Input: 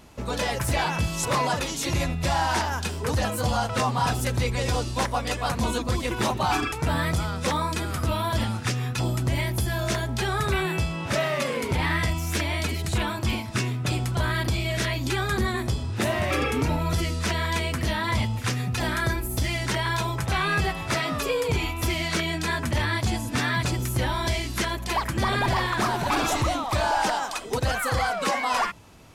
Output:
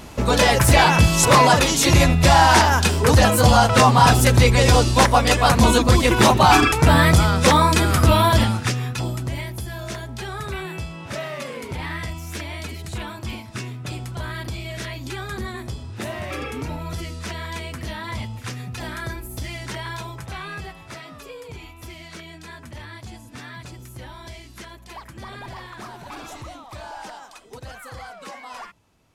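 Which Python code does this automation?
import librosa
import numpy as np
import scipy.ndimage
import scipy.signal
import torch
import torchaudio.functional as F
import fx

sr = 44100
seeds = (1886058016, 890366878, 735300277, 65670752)

y = fx.gain(x, sr, db=fx.line((8.24, 11.0), (8.76, 3.0), (9.57, -5.0), (19.86, -5.0), (21.11, -13.0)))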